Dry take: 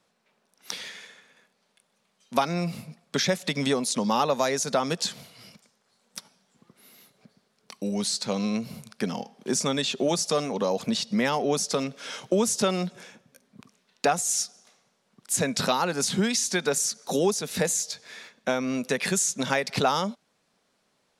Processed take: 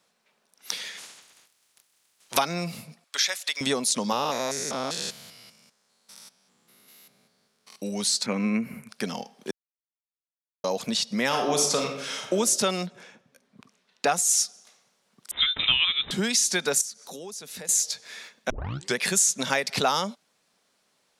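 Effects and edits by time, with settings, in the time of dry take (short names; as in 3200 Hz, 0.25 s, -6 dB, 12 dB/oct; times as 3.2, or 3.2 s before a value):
0.97–2.37 spectral limiter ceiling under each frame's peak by 24 dB
3.04–3.61 HPF 1100 Hz
4.12–7.76 stepped spectrum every 0.2 s
8.26–8.89 EQ curve 160 Hz 0 dB, 240 Hz +8 dB, 710 Hz -4 dB, 1400 Hz +4 dB, 2300 Hz +8 dB, 3500 Hz -20 dB, 5500 Hz -16 dB, 9900 Hz -7 dB
9.51–10.64 mute
11.26–12.32 reverb throw, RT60 0.85 s, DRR 1.5 dB
12.85–14.06 LPF 2000 Hz -> 4200 Hz 6 dB/oct
15.31–16.11 inverted band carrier 3800 Hz
16.81–17.69 compressor 2:1, threshold -47 dBFS
18.5 tape start 0.47 s
whole clip: tilt +1.5 dB/oct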